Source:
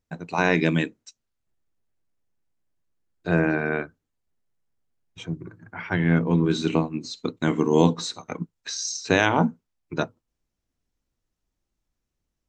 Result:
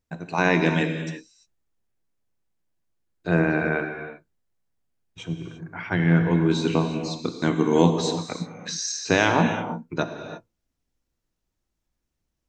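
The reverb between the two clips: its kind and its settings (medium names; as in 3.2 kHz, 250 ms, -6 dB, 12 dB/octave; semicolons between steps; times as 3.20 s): gated-style reverb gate 370 ms flat, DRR 5.5 dB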